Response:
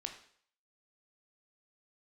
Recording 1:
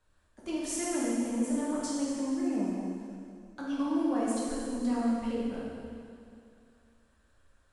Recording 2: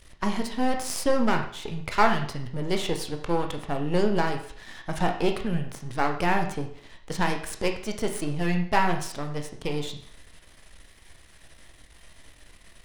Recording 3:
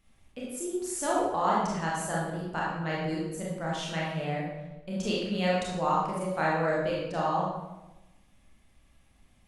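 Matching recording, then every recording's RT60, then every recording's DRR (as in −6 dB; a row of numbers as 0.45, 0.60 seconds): 2; 2.4, 0.55, 1.1 seconds; −7.0, 4.0, −5.5 decibels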